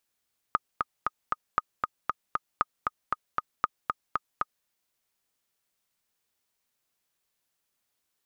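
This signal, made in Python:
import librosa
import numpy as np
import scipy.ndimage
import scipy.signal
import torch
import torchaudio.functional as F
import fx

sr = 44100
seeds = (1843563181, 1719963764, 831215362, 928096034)

y = fx.click_track(sr, bpm=233, beats=4, bars=4, hz=1240.0, accent_db=3.5, level_db=-9.5)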